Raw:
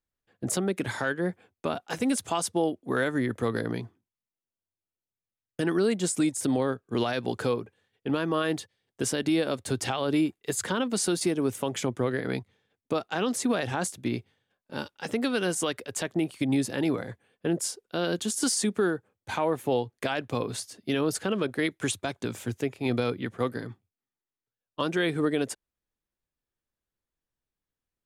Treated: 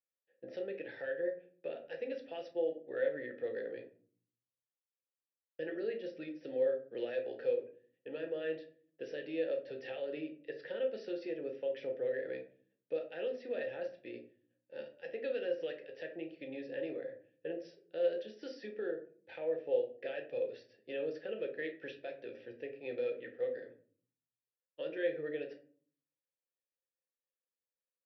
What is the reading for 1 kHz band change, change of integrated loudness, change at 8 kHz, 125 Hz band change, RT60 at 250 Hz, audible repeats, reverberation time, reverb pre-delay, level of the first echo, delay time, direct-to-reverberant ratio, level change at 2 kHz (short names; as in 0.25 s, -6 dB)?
-22.5 dB, -10.5 dB, under -40 dB, -27.0 dB, 0.80 s, none, 0.45 s, 6 ms, none, none, 3.5 dB, -13.0 dB